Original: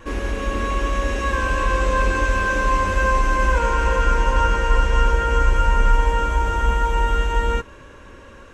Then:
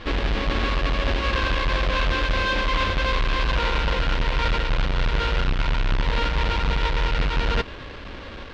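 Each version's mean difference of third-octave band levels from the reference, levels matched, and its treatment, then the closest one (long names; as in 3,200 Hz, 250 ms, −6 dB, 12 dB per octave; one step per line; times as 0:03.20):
7.0 dB: each half-wave held at its own peak
low-pass filter 3,800 Hz 24 dB per octave
high-shelf EQ 2,200 Hz +10.5 dB
reversed playback
downward compressor 6 to 1, threshold −20 dBFS, peak gain reduction 12.5 dB
reversed playback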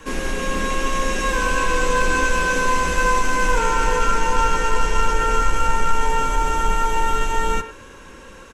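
4.5 dB: in parallel at −6.5 dB: hard clipping −15 dBFS, distortion −12 dB
on the sum: high-shelf EQ 4,500 Hz +11.5 dB
far-end echo of a speakerphone 100 ms, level −11 dB
frequency shifter −26 Hz
level −2.5 dB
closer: second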